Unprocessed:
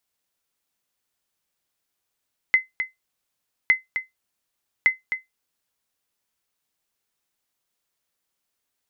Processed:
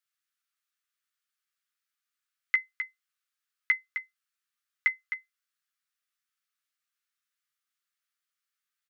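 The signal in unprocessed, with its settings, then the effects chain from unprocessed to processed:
sonar ping 2.05 kHz, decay 0.16 s, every 1.16 s, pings 3, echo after 0.26 s, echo -9 dB -8 dBFS
Chebyshev high-pass 1.2 kHz, order 6; treble shelf 2.2 kHz -9.5 dB; doubling 13 ms -7 dB

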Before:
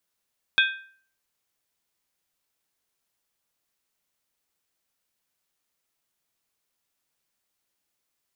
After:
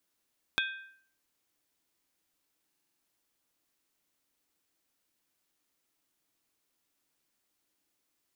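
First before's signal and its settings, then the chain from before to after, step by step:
skin hit, lowest mode 1.57 kHz, modes 4, decay 0.50 s, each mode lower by 2 dB, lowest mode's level -16 dB
peaking EQ 300 Hz +9 dB 0.51 oct; compression 4:1, threshold -30 dBFS; buffer glitch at 2.68 s, samples 2048, times 6

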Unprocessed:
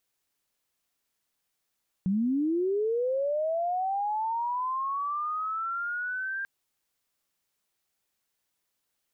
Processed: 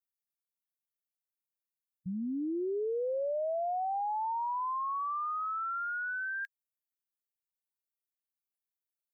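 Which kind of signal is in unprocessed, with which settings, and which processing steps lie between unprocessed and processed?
sweep linear 180 Hz -> 1.6 kHz -23 dBFS -> -30 dBFS 4.39 s
expander on every frequency bin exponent 3; high-pass 380 Hz 6 dB/octave

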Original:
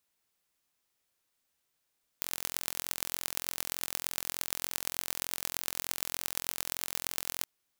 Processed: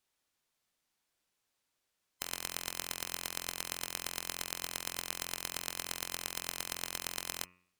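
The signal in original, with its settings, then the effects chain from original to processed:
pulse train 43.3 per s, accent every 5, -3 dBFS 5.22 s
split-band scrambler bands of 1 kHz; treble shelf 12 kHz -10.5 dB; de-hum 89.99 Hz, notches 34

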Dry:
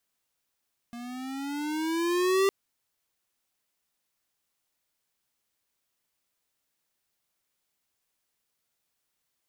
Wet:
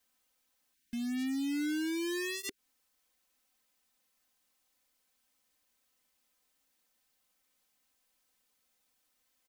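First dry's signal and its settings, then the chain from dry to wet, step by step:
gliding synth tone square, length 1.56 s, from 235 Hz, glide +9 st, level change +18 dB, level -22 dB
time-frequency box 0.74–2.58 s, 390–1400 Hz -17 dB; comb 3.9 ms, depth 99%; compression 6:1, threshold -32 dBFS

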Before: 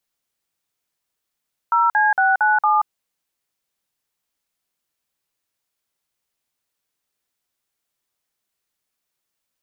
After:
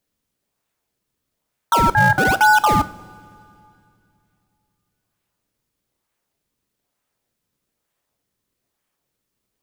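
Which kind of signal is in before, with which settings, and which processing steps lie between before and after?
DTMF "0C697", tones 180 ms, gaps 49 ms, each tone -16 dBFS
in parallel at -3.5 dB: decimation with a swept rate 34×, swing 160% 1.1 Hz; on the sum: filtered feedback delay 92 ms, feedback 84%, low-pass 1.1 kHz, level -24 dB; two-slope reverb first 0.44 s, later 2.7 s, from -18 dB, DRR 12.5 dB

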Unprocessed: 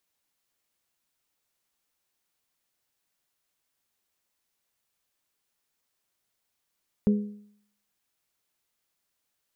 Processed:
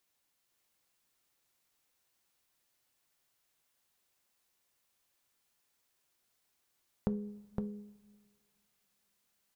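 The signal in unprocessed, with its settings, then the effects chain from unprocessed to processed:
metal hit bell, lowest mode 207 Hz, modes 3, decay 0.63 s, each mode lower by 10 dB, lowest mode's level -16 dB
compression, threshold -30 dBFS; on a send: delay 513 ms -4 dB; on the sum: two-slope reverb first 0.25 s, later 2.4 s, from -20 dB, DRR 11.5 dB

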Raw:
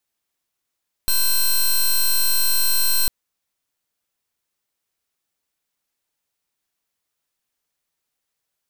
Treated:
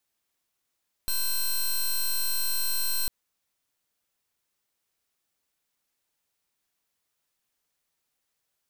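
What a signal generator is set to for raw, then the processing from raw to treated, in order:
pulse 4.15 kHz, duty 12% -17 dBFS 2.00 s
peak limiter -26 dBFS

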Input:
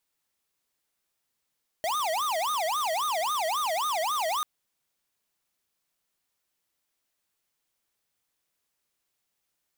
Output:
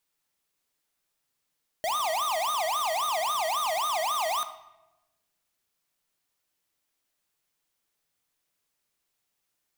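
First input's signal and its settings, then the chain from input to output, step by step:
siren wail 627–1240 Hz 3.7 per s square -28 dBFS 2.59 s
simulated room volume 490 m³, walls mixed, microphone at 0.4 m

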